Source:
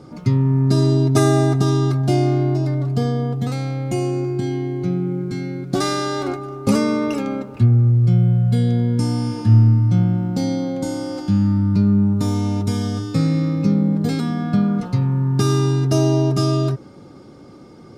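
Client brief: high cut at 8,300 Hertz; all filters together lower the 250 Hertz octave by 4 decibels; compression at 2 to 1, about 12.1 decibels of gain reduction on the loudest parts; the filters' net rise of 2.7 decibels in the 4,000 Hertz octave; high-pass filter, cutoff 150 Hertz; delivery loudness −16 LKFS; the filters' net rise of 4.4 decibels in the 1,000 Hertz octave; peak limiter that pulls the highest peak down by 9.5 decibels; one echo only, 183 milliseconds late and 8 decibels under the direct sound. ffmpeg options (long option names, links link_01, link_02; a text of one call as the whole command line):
ffmpeg -i in.wav -af "highpass=150,lowpass=8300,equalizer=frequency=250:width_type=o:gain=-4.5,equalizer=frequency=1000:width_type=o:gain=6,equalizer=frequency=4000:width_type=o:gain=3.5,acompressor=threshold=-36dB:ratio=2,alimiter=level_in=1dB:limit=-24dB:level=0:latency=1,volume=-1dB,aecho=1:1:183:0.398,volume=17dB" out.wav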